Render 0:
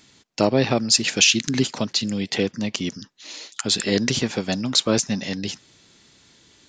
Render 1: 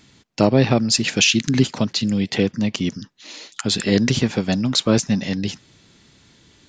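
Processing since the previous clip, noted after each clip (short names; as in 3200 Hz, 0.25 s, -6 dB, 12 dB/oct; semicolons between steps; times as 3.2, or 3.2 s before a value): tone controls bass +6 dB, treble -4 dB; gain +1.5 dB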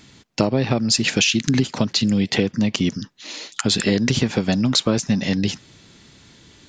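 compressor 10:1, threshold -18 dBFS, peak gain reduction 9.5 dB; gain +4 dB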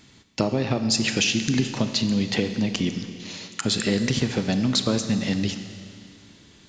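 Schroeder reverb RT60 2.4 s, combs from 28 ms, DRR 8 dB; gain -4.5 dB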